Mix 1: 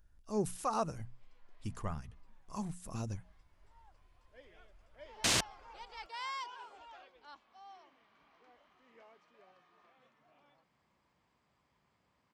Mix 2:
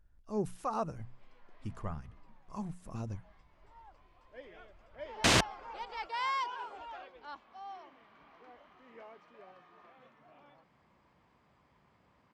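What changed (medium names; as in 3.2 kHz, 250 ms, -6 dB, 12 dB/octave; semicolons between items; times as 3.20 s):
background +9.0 dB; master: add treble shelf 3.8 kHz -12 dB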